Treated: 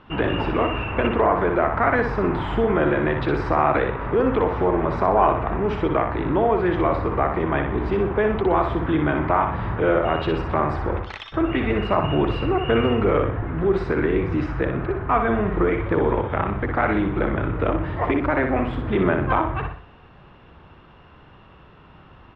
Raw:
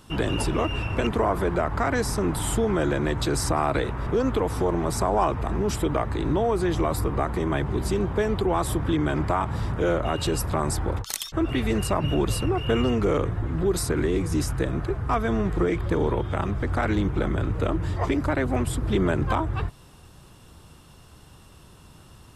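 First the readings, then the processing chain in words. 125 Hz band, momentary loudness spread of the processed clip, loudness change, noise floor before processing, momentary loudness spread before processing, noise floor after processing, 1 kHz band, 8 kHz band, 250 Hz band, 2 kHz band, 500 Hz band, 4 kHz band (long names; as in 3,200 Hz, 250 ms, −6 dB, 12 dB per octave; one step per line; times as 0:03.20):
0.0 dB, 5 LU, +3.5 dB, −50 dBFS, 3 LU, −49 dBFS, +6.0 dB, below −30 dB, +3.0 dB, +6.0 dB, +4.5 dB, −2.0 dB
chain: low-pass filter 2,600 Hz 24 dB per octave
low-shelf EQ 280 Hz −7.5 dB
on a send: repeating echo 61 ms, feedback 40%, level −6 dB
on the sum: level +5.5 dB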